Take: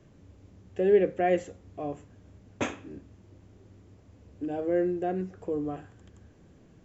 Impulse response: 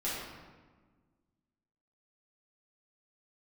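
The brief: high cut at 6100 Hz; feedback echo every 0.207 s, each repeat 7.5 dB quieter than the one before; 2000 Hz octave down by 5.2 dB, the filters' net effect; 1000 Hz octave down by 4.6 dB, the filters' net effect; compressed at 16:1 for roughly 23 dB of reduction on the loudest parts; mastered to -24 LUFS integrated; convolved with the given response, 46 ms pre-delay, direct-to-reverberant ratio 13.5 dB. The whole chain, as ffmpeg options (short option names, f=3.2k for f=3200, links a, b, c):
-filter_complex "[0:a]lowpass=6.1k,equalizer=f=1k:t=o:g=-8,equalizer=f=2k:t=o:g=-4,acompressor=threshold=-40dB:ratio=16,aecho=1:1:207|414|621|828|1035:0.422|0.177|0.0744|0.0312|0.0131,asplit=2[a][b];[1:a]atrim=start_sample=2205,adelay=46[c];[b][c]afir=irnorm=-1:irlink=0,volume=-19dB[d];[a][d]amix=inputs=2:normalize=0,volume=23dB"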